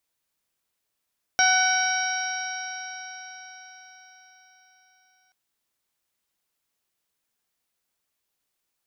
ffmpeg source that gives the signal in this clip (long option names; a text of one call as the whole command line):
ffmpeg -f lavfi -i "aevalsrc='0.0794*pow(10,-3*t/4.9)*sin(2*PI*744.26*t)+0.1*pow(10,-3*t/4.9)*sin(2*PI*1496.07*t)+0.0531*pow(10,-3*t/4.9)*sin(2*PI*2262.85*t)+0.0251*pow(10,-3*t/4.9)*sin(2*PI*3051.77*t)+0.0282*pow(10,-3*t/4.9)*sin(2*PI*3869.67*t)+0.0178*pow(10,-3*t/4.9)*sin(2*PI*4722.96*t)+0.0944*pow(10,-3*t/4.9)*sin(2*PI*5617.56*t)':duration=3.93:sample_rate=44100" out.wav